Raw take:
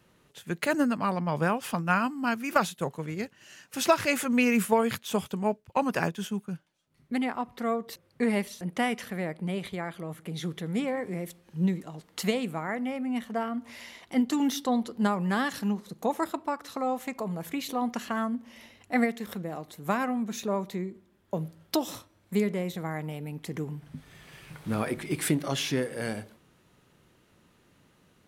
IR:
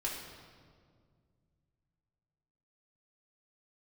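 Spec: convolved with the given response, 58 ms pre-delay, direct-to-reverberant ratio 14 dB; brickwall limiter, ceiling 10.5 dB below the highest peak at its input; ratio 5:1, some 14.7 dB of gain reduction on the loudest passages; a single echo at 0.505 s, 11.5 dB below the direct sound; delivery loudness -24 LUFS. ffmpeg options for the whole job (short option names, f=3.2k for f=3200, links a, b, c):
-filter_complex "[0:a]acompressor=threshold=-35dB:ratio=5,alimiter=level_in=6dB:limit=-24dB:level=0:latency=1,volume=-6dB,aecho=1:1:505:0.266,asplit=2[a][b];[1:a]atrim=start_sample=2205,adelay=58[c];[b][c]afir=irnorm=-1:irlink=0,volume=-17dB[d];[a][d]amix=inputs=2:normalize=0,volume=16.5dB"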